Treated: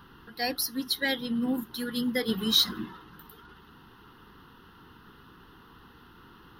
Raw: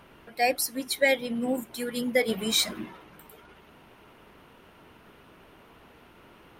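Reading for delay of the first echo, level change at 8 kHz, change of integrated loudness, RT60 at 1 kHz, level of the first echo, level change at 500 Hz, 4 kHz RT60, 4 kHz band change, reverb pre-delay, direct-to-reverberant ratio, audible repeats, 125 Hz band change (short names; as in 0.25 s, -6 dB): none, -5.5 dB, -1.5 dB, none, none, -8.0 dB, none, +3.0 dB, none, none, none, +2.5 dB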